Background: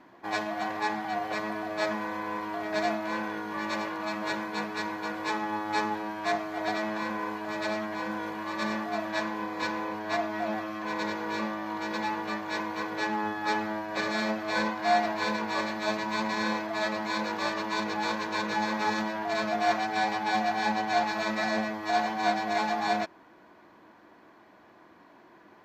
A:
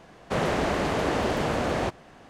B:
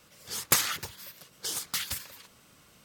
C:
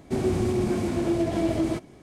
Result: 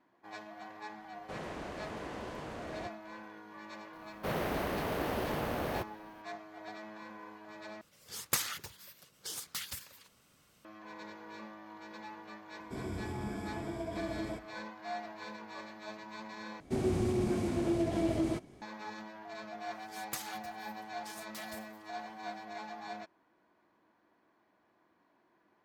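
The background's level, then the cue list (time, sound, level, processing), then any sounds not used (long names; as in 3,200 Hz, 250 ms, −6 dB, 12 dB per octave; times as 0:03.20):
background −16 dB
0:00.98: mix in A −17.5 dB
0:03.93: mix in A −9 dB + bad sample-rate conversion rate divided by 3×, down filtered, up hold
0:07.81: overwrite with B −8 dB
0:12.60: mix in C −15 dB + EQ curve with evenly spaced ripples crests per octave 1.7, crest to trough 12 dB
0:16.60: overwrite with C −6.5 dB
0:19.61: mix in B −17 dB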